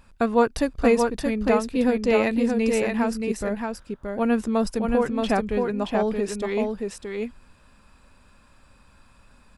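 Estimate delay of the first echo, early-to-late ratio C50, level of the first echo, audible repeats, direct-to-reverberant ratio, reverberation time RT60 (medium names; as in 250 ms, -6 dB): 625 ms, no reverb, -4.0 dB, 1, no reverb, no reverb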